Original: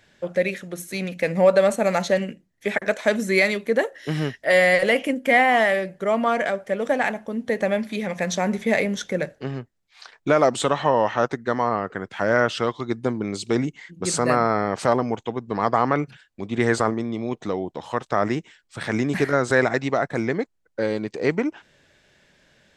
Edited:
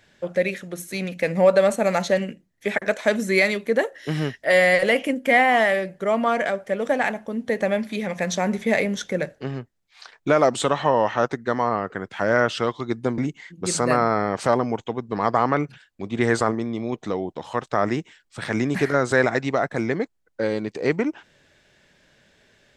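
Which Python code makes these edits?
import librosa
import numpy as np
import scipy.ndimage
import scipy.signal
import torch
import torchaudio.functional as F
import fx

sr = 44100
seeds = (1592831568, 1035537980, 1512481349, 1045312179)

y = fx.edit(x, sr, fx.cut(start_s=13.18, length_s=0.39), tone=tone)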